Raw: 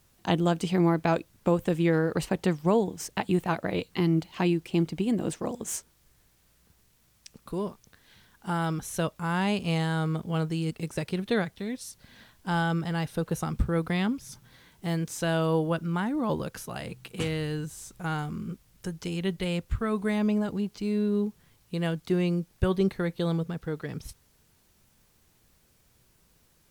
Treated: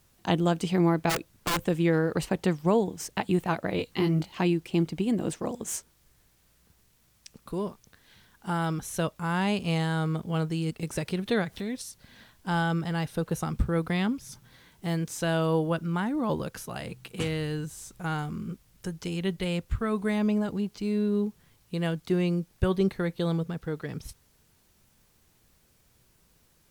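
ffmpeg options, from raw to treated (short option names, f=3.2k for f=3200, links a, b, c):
-filter_complex "[0:a]asplit=3[a][b][c];[a]afade=t=out:st=1.09:d=0.02[d];[b]aeval=exprs='(mod(11.2*val(0)+1,2)-1)/11.2':c=same,afade=t=in:st=1.09:d=0.02,afade=t=out:st=1.66:d=0.02[e];[c]afade=t=in:st=1.66:d=0.02[f];[d][e][f]amix=inputs=3:normalize=0,asettb=1/sr,asplit=3[g][h][i];[g]atrim=end=3.774[j];[h]atrim=start=3.77:end=4.33,asetpts=PTS-STARTPTS,afade=t=in:d=0.004:c=qsin,afade=t=out:st=0.556:d=0.004:c=qsin,asplit=2[k][l];[l]adelay=20,volume=-4dB[m];[k][m]amix=inputs=2:normalize=0,atrim=end_sample=24696[n];[i]atrim=start=4.326[o];[j][n]acrossfade=d=0.004:c1=hsin:c2=qsin[p];[p][o]acrossfade=d=0.004:c1=qsin:c2=hsin,asettb=1/sr,asplit=3[q][r][s];[q]atrim=end=10.834[t];[r]atrim=start=10.83:end=11.82,asetpts=PTS-STARTPTS,afade=t=in:d=0.004:c=qsin,afade=t=out:st=0.986:d=0.004:c=qsin,acompressor=mode=upward:threshold=-29dB:ratio=2.5:attack=3.2:release=140:knee=2.83:detection=peak[u];[s]atrim=start=11.816[v];[t][u]acrossfade=d=0.004:c1=hsin:c2=qsin[w];[w][v]acrossfade=d=0.004:c1=qsin:c2=hsin"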